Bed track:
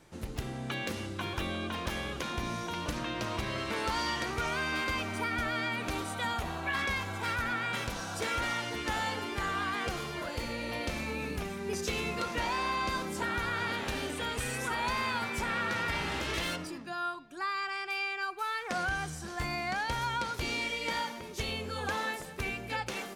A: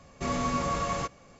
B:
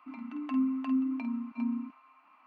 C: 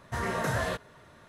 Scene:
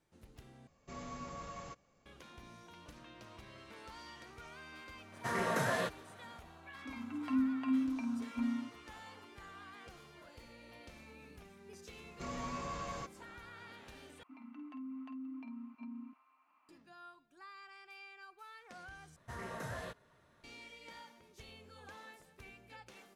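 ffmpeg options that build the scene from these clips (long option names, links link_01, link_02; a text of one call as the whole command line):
ffmpeg -i bed.wav -i cue0.wav -i cue1.wav -i cue2.wav -filter_complex "[1:a]asplit=2[link_01][link_02];[3:a]asplit=2[link_03][link_04];[2:a]asplit=2[link_05][link_06];[0:a]volume=-19.5dB[link_07];[link_03]highpass=frequency=140:width=0.5412,highpass=frequency=140:width=1.3066[link_08];[link_02]asoftclip=type=tanh:threshold=-22dB[link_09];[link_06]alimiter=level_in=5.5dB:limit=-24dB:level=0:latency=1:release=52,volume=-5.5dB[link_10];[link_07]asplit=4[link_11][link_12][link_13][link_14];[link_11]atrim=end=0.674[link_15];[link_01]atrim=end=1.39,asetpts=PTS-STARTPTS,volume=-17dB[link_16];[link_12]atrim=start=2.056:end=14.234[link_17];[link_10]atrim=end=2.46,asetpts=PTS-STARTPTS,volume=-11dB[link_18];[link_13]atrim=start=16.686:end=19.164[link_19];[link_04]atrim=end=1.28,asetpts=PTS-STARTPTS,volume=-13.5dB[link_20];[link_14]atrim=start=20.436[link_21];[link_08]atrim=end=1.28,asetpts=PTS-STARTPTS,volume=-3dB,afade=type=in:duration=0.004:curve=hsin,afade=type=out:start_time=1.276:duration=0.004:curve=hsin,adelay=5120[link_22];[link_05]atrim=end=2.46,asetpts=PTS-STARTPTS,volume=-3.5dB,afade=type=in:duration=0.004:curve=hsin,afade=type=out:start_time=2.456:duration=0.004:curve=hsin,adelay=6790[link_23];[link_09]atrim=end=1.39,asetpts=PTS-STARTPTS,volume=-11.5dB,afade=type=in:duration=0.004:curve=hsin,afade=type=out:start_time=1.386:duration=0.004:curve=hsin,adelay=11990[link_24];[link_15][link_16]acrossfade=duration=0.004:curve1=hsin:curve2=hsin[link_25];[link_25][link_17]acrossfade=duration=0.004:curve1=hsin:curve2=hsin[link_26];[link_26][link_18]acrossfade=duration=0.004:curve1=hsin:curve2=hsin[link_27];[link_27][link_19]acrossfade=duration=0.004:curve1=hsin:curve2=hsin[link_28];[link_28][link_20]acrossfade=duration=0.004:curve1=hsin:curve2=hsin[link_29];[link_29][link_21]acrossfade=duration=0.004:curve1=hsin:curve2=hsin[link_30];[link_30][link_22][link_23][link_24]amix=inputs=4:normalize=0" out.wav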